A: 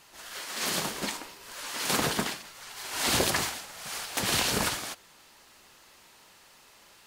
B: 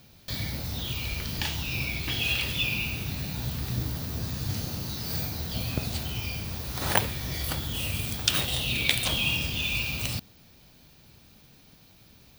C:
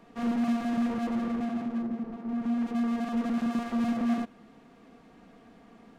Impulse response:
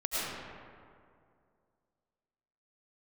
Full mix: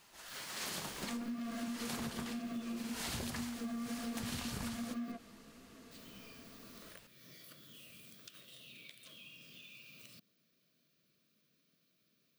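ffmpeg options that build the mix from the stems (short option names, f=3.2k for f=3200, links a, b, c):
-filter_complex "[0:a]asubboost=boost=4:cutoff=200,volume=-7.5dB[a];[1:a]highpass=f=160:w=0.5412,highpass=f=160:w=1.3066,acompressor=threshold=-33dB:ratio=6,volume=-19.5dB,asplit=3[b][c][d];[b]atrim=end=5.12,asetpts=PTS-STARTPTS,afade=t=out:st=5.116:d=0.004:c=hsin[e];[c]atrim=start=5.12:end=5.91,asetpts=PTS-STARTPTS,volume=0[f];[d]atrim=start=5.91,asetpts=PTS-STARTPTS,afade=t=in:d=0.004:c=hsin[g];[e][f][g]concat=n=3:v=0:a=1[h];[2:a]flanger=delay=15.5:depth=5:speed=1.9,adelay=900,volume=-1dB[i];[h][i]amix=inputs=2:normalize=0,asuperstop=centerf=850:order=20:qfactor=2.5,acompressor=threshold=-30dB:ratio=6,volume=0dB[j];[a][j]amix=inputs=2:normalize=0,acompressor=threshold=-38dB:ratio=6"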